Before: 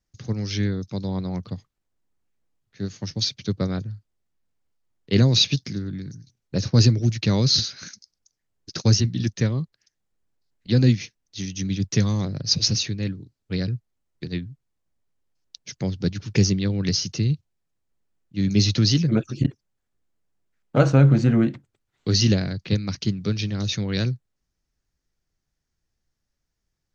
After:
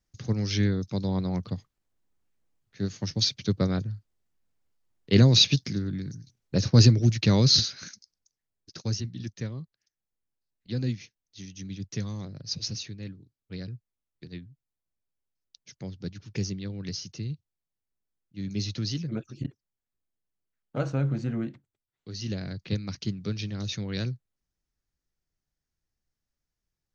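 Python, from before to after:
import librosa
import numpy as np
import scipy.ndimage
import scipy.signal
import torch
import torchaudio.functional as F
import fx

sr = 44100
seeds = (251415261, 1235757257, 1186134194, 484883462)

y = fx.gain(x, sr, db=fx.line((7.57, -0.5), (8.79, -12.0), (21.53, -12.0), (22.14, -19.0), (22.51, -7.0)))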